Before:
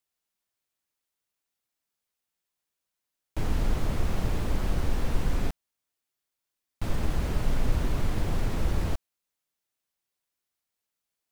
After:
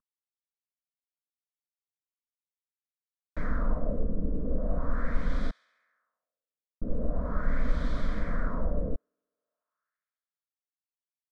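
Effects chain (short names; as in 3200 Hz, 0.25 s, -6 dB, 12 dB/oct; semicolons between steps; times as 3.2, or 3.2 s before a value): CVSD 64 kbps; fixed phaser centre 550 Hz, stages 8; on a send: thin delay 68 ms, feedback 79%, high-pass 1600 Hz, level -21 dB; on the sum: LFO low-pass sine 0.41 Hz 370–3400 Hz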